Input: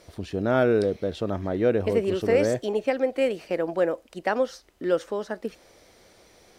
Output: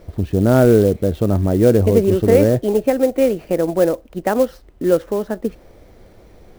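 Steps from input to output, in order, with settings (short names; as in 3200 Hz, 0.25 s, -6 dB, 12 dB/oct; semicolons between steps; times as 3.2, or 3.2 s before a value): tilt -3.5 dB/oct; clock jitter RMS 0.024 ms; gain +4.5 dB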